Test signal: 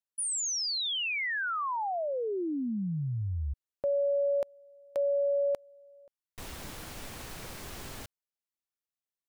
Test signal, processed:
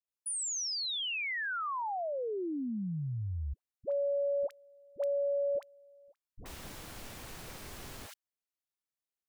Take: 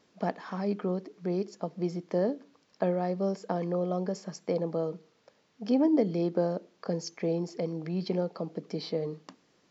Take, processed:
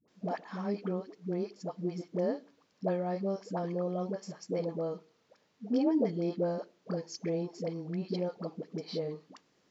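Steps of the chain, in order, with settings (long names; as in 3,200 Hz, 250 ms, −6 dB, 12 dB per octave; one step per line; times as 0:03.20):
all-pass dispersion highs, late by 80 ms, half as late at 570 Hz
level −3.5 dB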